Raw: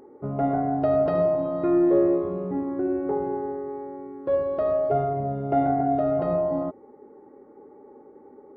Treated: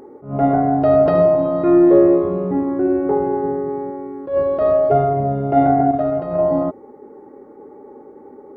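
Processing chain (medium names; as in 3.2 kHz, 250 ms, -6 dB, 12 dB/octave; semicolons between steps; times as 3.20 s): 3.43–3.91 s: peaking EQ 160 Hz +10 dB 0.94 oct; 5.91–6.39 s: gate -22 dBFS, range -9 dB; attacks held to a fixed rise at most 150 dB/s; trim +8.5 dB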